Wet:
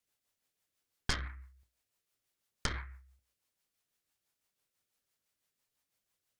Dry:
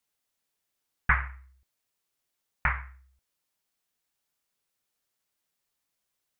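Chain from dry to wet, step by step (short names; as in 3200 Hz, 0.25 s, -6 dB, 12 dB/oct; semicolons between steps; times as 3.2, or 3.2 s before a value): tracing distortion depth 0.4 ms; bell 100 Hz +5.5 dB 0.31 oct; notches 60/120/180/240/300/360 Hz; compressor 5:1, threshold -29 dBFS, peak gain reduction 10.5 dB; rotary speaker horn 6 Hz; gain +1 dB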